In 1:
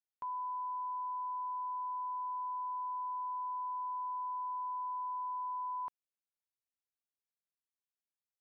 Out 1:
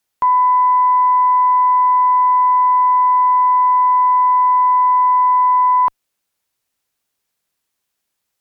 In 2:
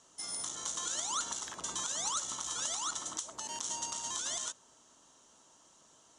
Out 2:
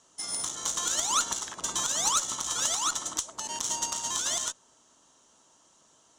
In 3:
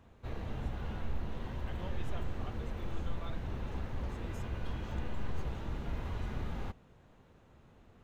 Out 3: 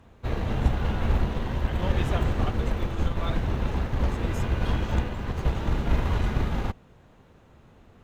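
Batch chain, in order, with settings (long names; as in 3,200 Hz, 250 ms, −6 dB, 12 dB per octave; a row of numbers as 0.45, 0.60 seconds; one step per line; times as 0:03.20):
harmonic generator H 2 −13 dB, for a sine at −19 dBFS
expander for the loud parts 1.5 to 1, over −50 dBFS
normalise the peak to −9 dBFS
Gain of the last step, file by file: +26.0, +9.5, +15.5 decibels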